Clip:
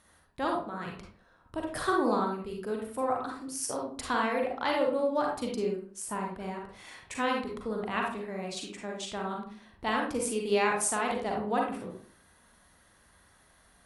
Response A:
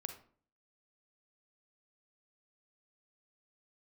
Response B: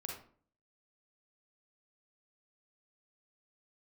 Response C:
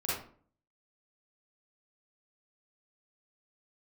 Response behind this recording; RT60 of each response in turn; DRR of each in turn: B; 0.50, 0.50, 0.50 s; 6.5, -1.0, -9.0 dB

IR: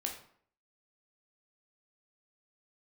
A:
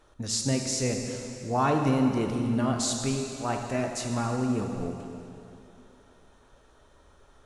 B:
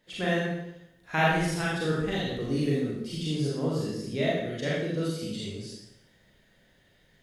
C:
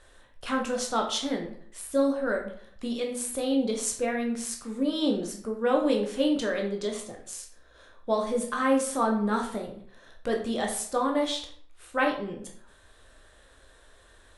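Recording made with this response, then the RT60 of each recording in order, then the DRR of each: C; 2.8, 0.80, 0.60 s; 2.5, -6.5, 1.0 dB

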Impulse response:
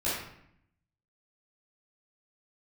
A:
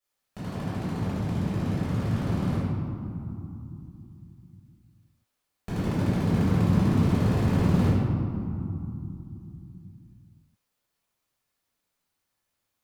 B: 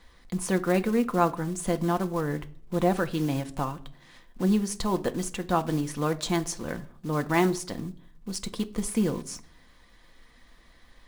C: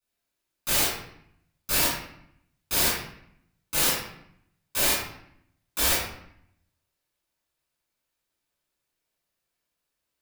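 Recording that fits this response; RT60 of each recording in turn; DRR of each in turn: C; 2.9, 0.55, 0.70 s; -13.0, 6.5, -11.0 dB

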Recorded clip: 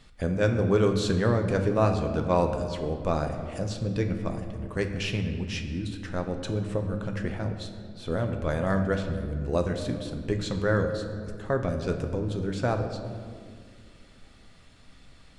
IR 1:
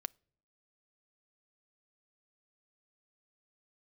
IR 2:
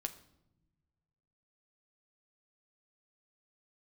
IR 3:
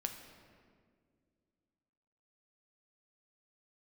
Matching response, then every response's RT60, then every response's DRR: 3; not exponential, not exponential, 2.0 s; 18.5, 7.0, 4.5 dB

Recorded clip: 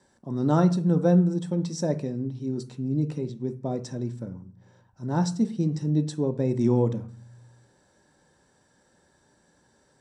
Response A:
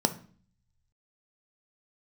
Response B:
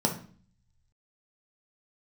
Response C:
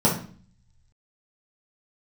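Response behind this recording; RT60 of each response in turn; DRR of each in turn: A; 0.45, 0.45, 0.45 s; 8.5, 1.0, -6.5 dB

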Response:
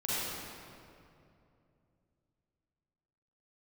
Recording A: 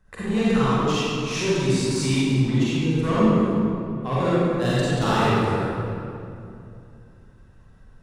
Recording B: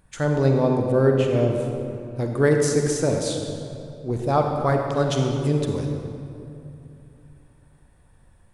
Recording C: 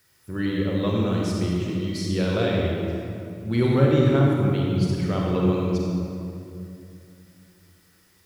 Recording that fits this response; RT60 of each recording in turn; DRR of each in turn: A; 2.6, 2.7, 2.7 s; -10.5, 2.5, -2.5 dB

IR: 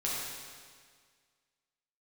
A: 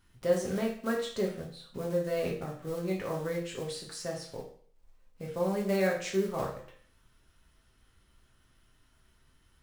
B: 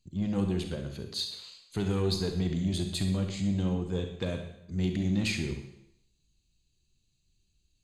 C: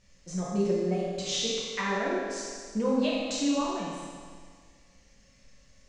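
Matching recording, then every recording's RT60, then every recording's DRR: C; 0.50, 0.75, 1.8 s; -2.0, 5.0, -6.5 dB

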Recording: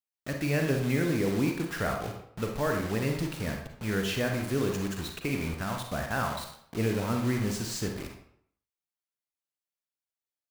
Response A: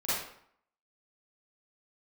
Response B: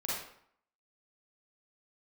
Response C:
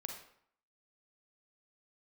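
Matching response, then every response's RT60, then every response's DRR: C; 0.65, 0.65, 0.65 s; -13.0, -7.0, 2.5 dB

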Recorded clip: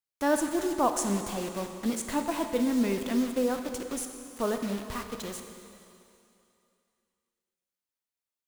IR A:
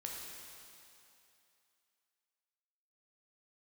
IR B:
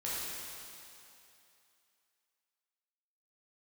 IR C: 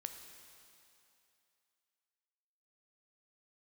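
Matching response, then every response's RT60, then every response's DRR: C; 2.8, 2.8, 2.8 s; -2.0, -8.5, 6.0 dB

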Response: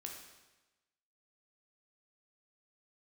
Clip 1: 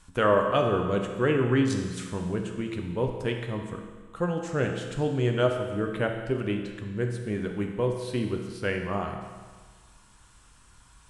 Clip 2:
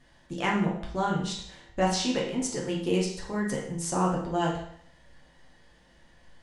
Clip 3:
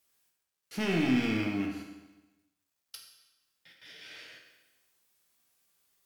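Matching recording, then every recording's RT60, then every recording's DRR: 3; 1.5, 0.60, 1.1 s; 3.0, -3.5, 0.5 dB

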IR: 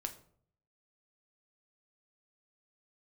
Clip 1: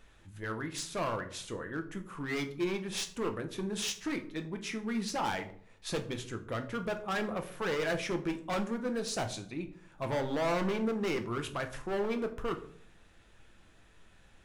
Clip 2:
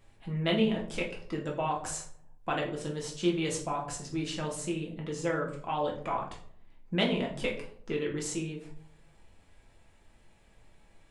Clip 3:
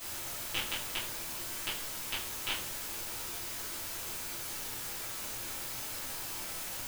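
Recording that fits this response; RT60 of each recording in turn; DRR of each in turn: 1; 0.60, 0.60, 0.60 s; 5.5, -1.5, -11.5 dB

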